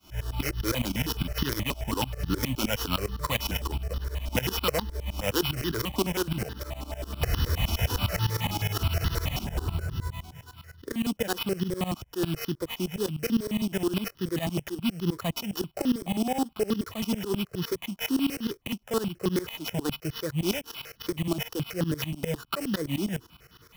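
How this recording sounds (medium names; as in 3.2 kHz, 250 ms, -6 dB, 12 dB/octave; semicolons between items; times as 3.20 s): a buzz of ramps at a fixed pitch in blocks of 8 samples; tremolo saw up 9.8 Hz, depth 95%; aliases and images of a low sample rate 8.5 kHz, jitter 0%; notches that jump at a steady rate 9.4 Hz 480–2300 Hz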